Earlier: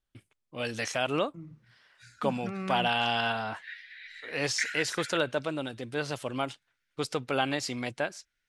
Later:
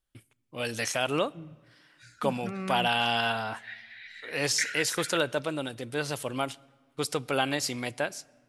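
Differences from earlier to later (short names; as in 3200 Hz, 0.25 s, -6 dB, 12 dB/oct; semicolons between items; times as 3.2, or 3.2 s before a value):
first voice: remove air absorption 58 m; reverb: on, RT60 1.5 s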